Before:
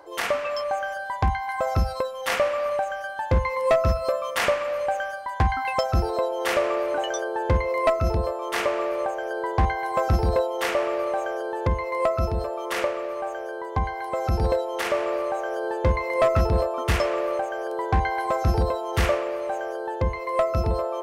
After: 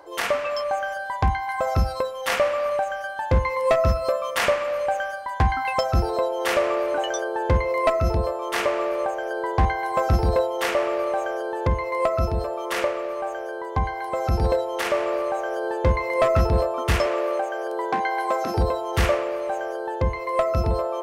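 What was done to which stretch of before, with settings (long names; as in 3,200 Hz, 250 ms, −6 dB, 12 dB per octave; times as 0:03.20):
0:17.06–0:18.57: high-pass filter 230 Hz 24 dB per octave
whole clip: hum removal 108.6 Hz, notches 23; level +1.5 dB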